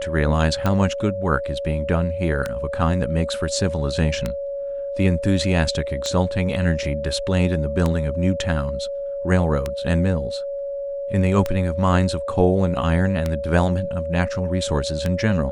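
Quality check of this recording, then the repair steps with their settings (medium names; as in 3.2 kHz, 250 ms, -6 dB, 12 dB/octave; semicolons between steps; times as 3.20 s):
tick 33 1/3 rpm -9 dBFS
whine 560 Hz -25 dBFS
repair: de-click; band-stop 560 Hz, Q 30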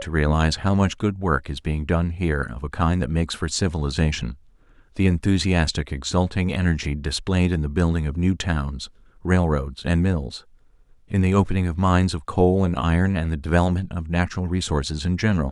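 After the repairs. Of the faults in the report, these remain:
nothing left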